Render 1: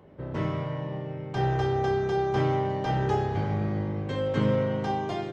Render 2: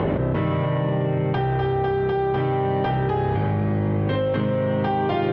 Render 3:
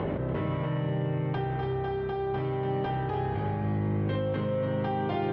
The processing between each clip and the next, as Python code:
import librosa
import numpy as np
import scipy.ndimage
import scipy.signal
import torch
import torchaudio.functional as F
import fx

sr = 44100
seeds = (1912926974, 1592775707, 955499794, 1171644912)

y1 = scipy.signal.sosfilt(scipy.signal.butter(4, 3400.0, 'lowpass', fs=sr, output='sos'), x)
y1 = fx.env_flatten(y1, sr, amount_pct=100)
y2 = y1 + 10.0 ** (-8.0 / 20.0) * np.pad(y1, (int(290 * sr / 1000.0), 0))[:len(y1)]
y2 = y2 * librosa.db_to_amplitude(-8.5)